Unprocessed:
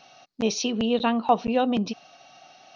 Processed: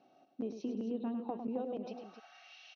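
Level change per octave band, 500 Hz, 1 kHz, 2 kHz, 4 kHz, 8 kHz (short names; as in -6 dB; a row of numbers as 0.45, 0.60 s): -14.5 dB, -21.0 dB, -22.5 dB, under -25 dB, n/a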